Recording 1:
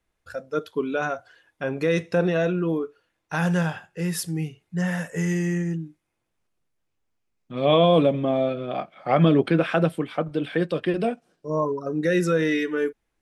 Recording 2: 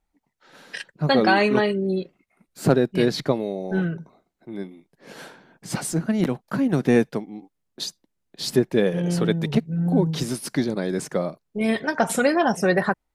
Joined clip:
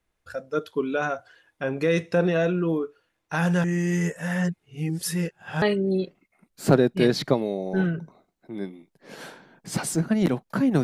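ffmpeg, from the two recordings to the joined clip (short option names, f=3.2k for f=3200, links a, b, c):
-filter_complex "[0:a]apad=whole_dur=10.83,atrim=end=10.83,asplit=2[a][b];[a]atrim=end=3.642[c];[b]atrim=start=3.638:end=5.622,asetpts=PTS-STARTPTS,areverse[d];[1:a]atrim=start=1.598:end=6.81[e];[c][d]acrossfade=d=0.004:c1=hsin:c2=hsin[f];[f][e]acrossfade=d=0.004:c1=hsin:c2=hsin"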